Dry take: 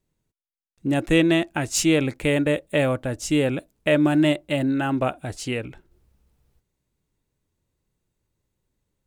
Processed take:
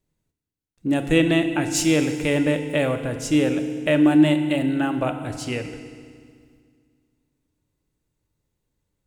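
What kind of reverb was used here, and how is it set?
FDN reverb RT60 2 s, low-frequency decay 1.3×, high-frequency decay 0.95×, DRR 7 dB; trim -1 dB

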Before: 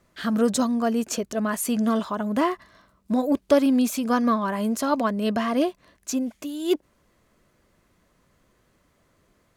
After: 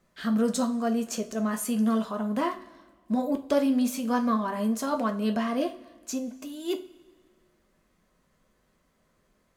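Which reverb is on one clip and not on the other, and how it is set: two-slope reverb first 0.29 s, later 1.6 s, from -19 dB, DRR 4.5 dB; trim -6 dB

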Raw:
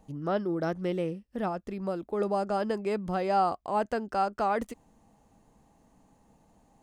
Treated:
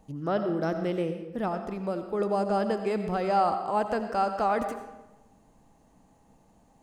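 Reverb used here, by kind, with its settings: algorithmic reverb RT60 1 s, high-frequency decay 0.75×, pre-delay 45 ms, DRR 7.5 dB; trim +1 dB

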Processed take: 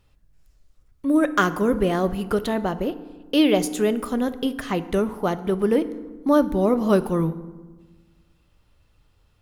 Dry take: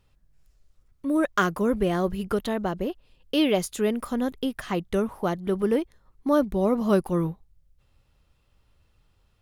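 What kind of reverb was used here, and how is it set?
FDN reverb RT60 1.3 s, low-frequency decay 1.4×, high-frequency decay 0.55×, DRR 12 dB; trim +3 dB

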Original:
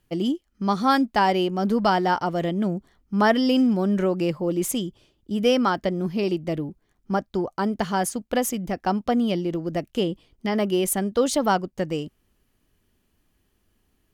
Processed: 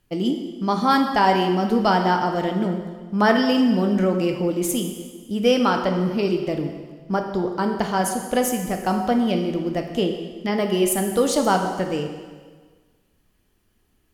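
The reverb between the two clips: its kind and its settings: plate-style reverb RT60 1.5 s, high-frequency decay 0.95×, DRR 3.5 dB; trim +1 dB

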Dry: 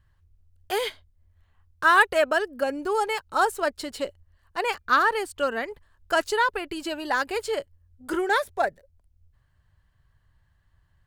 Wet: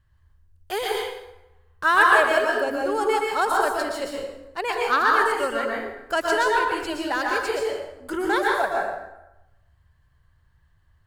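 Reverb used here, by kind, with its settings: plate-style reverb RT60 0.94 s, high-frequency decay 0.7×, pre-delay 105 ms, DRR -2 dB; trim -1.5 dB

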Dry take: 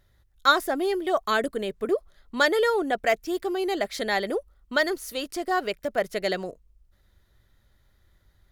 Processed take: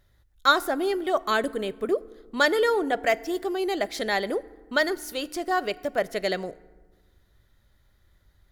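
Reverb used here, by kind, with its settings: FDN reverb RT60 1.4 s, low-frequency decay 1.4×, high-frequency decay 0.5×, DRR 18 dB

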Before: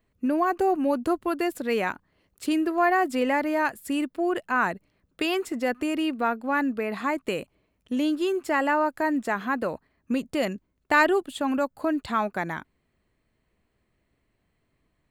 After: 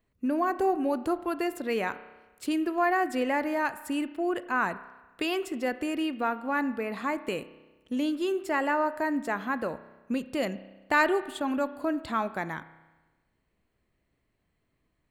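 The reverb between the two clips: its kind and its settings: spring tank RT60 1.2 s, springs 31 ms, chirp 25 ms, DRR 13.5 dB; trim -3.5 dB

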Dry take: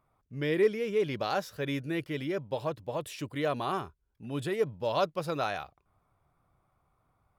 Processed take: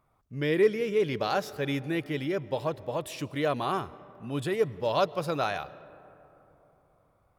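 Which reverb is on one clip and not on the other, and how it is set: algorithmic reverb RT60 3.5 s, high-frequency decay 0.35×, pre-delay 85 ms, DRR 19 dB; trim +2.5 dB

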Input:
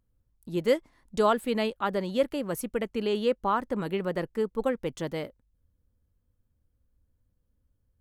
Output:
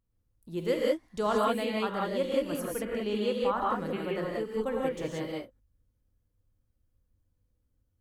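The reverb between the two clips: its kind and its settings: gated-style reverb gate 210 ms rising, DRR -3.5 dB; trim -6.5 dB

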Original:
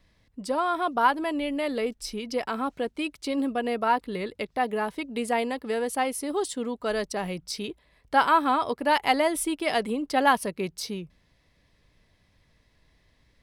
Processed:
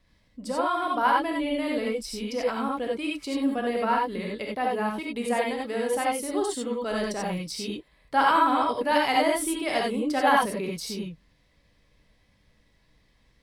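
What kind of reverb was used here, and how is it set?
gated-style reverb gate 110 ms rising, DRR -1.5 dB; trim -3.5 dB

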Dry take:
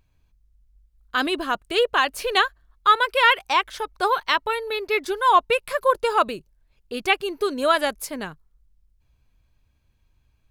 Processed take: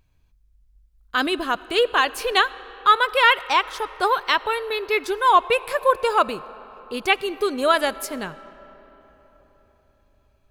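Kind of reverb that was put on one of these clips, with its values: algorithmic reverb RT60 4.4 s, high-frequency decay 0.55×, pre-delay 30 ms, DRR 18 dB; trim +1 dB

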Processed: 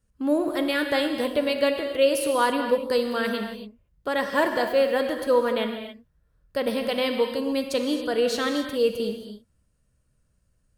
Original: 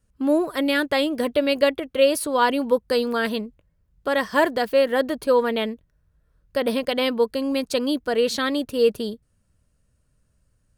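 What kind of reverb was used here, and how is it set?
gated-style reverb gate 300 ms flat, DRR 4.5 dB; trim -3.5 dB

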